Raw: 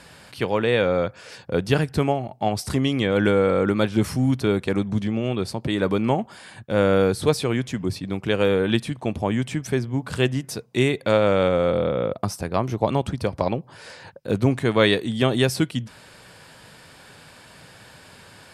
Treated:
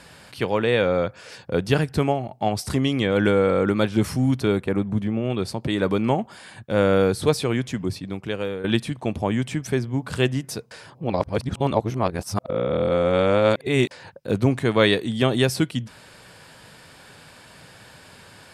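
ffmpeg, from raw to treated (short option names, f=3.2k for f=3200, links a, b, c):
-filter_complex "[0:a]asettb=1/sr,asplit=3[a][b][c];[a]atrim=end=4.614[d];[b]atrim=start=4.61:end=5.3,asetpts=PTS-STARTPTS,afade=t=in:d=0.004:c=qsin,afade=t=out:st=0.686:d=0.004:c=qsin,equalizer=f=5.3k:w=0.82:g=-12.5[e];[c]atrim=start=5.296[f];[d][e]acrossfade=d=0.004:c1=hsin:c2=qsin[g];[g][f]acrossfade=d=0.004:c1=qsin:c2=hsin,asplit=4[h][i][j][k];[h]atrim=end=8.64,asetpts=PTS-STARTPTS,afade=t=out:st=7.77:d=0.87:silence=0.237137[l];[i]atrim=start=8.64:end=10.712,asetpts=PTS-STARTPTS,afade=t=in:d=0.004:c=hsin:silence=0.237137[m];[j]atrim=start=10.708:end=13.912,asetpts=PTS-STARTPTS,areverse[n];[k]atrim=start=13.908[o];[l][m]concat=n=2:v=0:a=1[p];[p][n]acrossfade=d=0.004:c1=hsin:c2=hsin[q];[q][o]acrossfade=d=0.004:c1=hsin:c2=hsin"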